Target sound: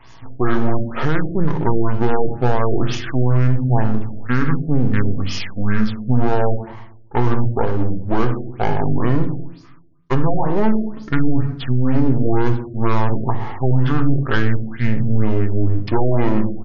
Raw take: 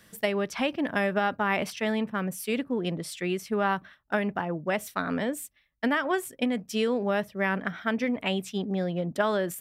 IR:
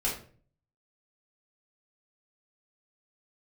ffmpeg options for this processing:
-filter_complex "[0:a]aeval=exprs='if(lt(val(0),0),0.251*val(0),val(0))':c=same,bandreject=f=146.6:t=h:w=4,bandreject=f=293.2:t=h:w=4,bandreject=f=439.8:t=h:w=4,bandreject=f=586.4:t=h:w=4,bandreject=f=733:t=h:w=4,bandreject=f=879.6:t=h:w=4,bandreject=f=1026.2:t=h:w=4,asplit=2[s0][s1];[s1]adynamicequalizer=threshold=0.00501:dfrequency=1800:dqfactor=0.79:tfrequency=1800:tqfactor=0.79:attack=5:release=100:ratio=0.375:range=3.5:mode=cutabove:tftype=bell[s2];[1:a]atrim=start_sample=2205[s3];[s2][s3]afir=irnorm=-1:irlink=0,volume=0.398[s4];[s0][s4]amix=inputs=2:normalize=0,asetrate=25442,aresample=44100,alimiter=level_in=5.62:limit=0.891:release=50:level=0:latency=1,afftfilt=real='re*lt(b*sr/1024,710*pow(7200/710,0.5+0.5*sin(2*PI*2.1*pts/sr)))':imag='im*lt(b*sr/1024,710*pow(7200/710,0.5+0.5*sin(2*PI*2.1*pts/sr)))':win_size=1024:overlap=0.75,volume=0.631"

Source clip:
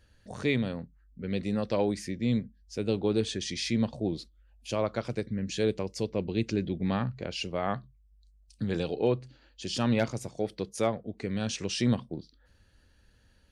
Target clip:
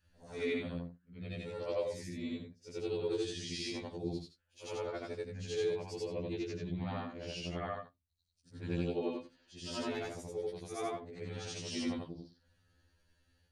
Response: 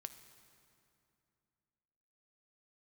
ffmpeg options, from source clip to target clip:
-af "afftfilt=real='re':imag='-im':win_size=8192:overlap=0.75,afftfilt=real='re*2*eq(mod(b,4),0)':imag='im*2*eq(mod(b,4),0)':win_size=2048:overlap=0.75,volume=0.891"

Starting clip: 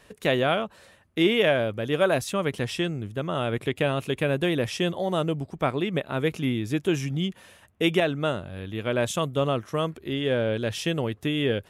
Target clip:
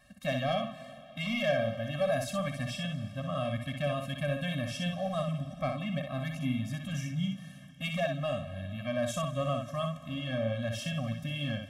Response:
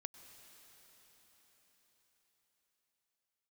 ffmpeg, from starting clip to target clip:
-filter_complex "[0:a]asoftclip=type=tanh:threshold=0.178,asplit=2[s0][s1];[1:a]atrim=start_sample=2205,asetrate=66150,aresample=44100,adelay=62[s2];[s1][s2]afir=irnorm=-1:irlink=0,volume=1.5[s3];[s0][s3]amix=inputs=2:normalize=0,afftfilt=real='re*eq(mod(floor(b*sr/1024/260),2),0)':imag='im*eq(mod(floor(b*sr/1024/260),2),0)':win_size=1024:overlap=0.75,volume=0.596"

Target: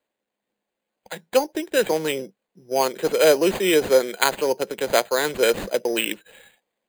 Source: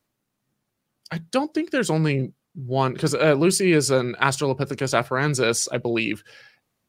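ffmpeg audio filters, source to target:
-filter_complex "[0:a]highpass=140,acrossover=split=340 4700:gain=0.0708 1 0.2[s0][s1][s2];[s0][s1][s2]amix=inputs=3:normalize=0,asplit=2[s3][s4];[s4]aeval=exprs='sgn(val(0))*max(abs(val(0))-0.0237,0)':c=same,volume=0.422[s5];[s3][s5]amix=inputs=2:normalize=0,acrusher=samples=8:mix=1:aa=0.000001,equalizer=f=200:t=o:w=0.33:g=9,equalizer=f=500:t=o:w=0.33:g=6,equalizer=f=1250:t=o:w=0.33:g=-9"

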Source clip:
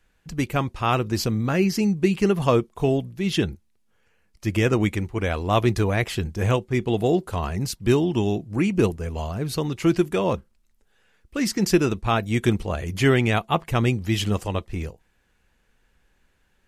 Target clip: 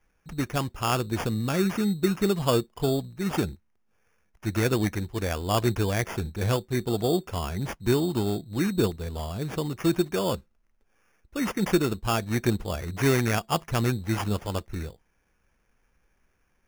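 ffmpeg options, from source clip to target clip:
-af "acrusher=samples=11:mix=1:aa=0.000001,volume=0.631"

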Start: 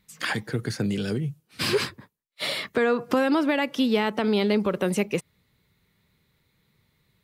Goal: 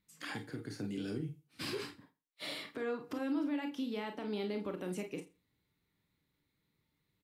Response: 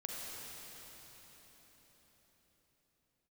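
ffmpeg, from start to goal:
-filter_complex "[0:a]equalizer=f=290:t=o:w=0.29:g=10.5,alimiter=limit=0.168:level=0:latency=1:release=225,aecho=1:1:83|166:0.106|0.0169[s0];[1:a]atrim=start_sample=2205,atrim=end_sample=3969,asetrate=70560,aresample=44100[s1];[s0][s1]afir=irnorm=-1:irlink=0,volume=0.501"

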